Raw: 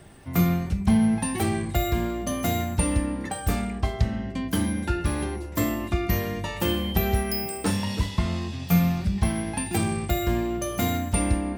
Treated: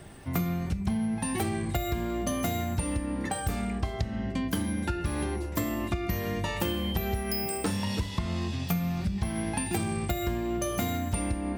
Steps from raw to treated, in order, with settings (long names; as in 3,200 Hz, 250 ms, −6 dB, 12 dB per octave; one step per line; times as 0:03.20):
downward compressor 10 to 1, threshold −27 dBFS, peak gain reduction 12.5 dB
level +1.5 dB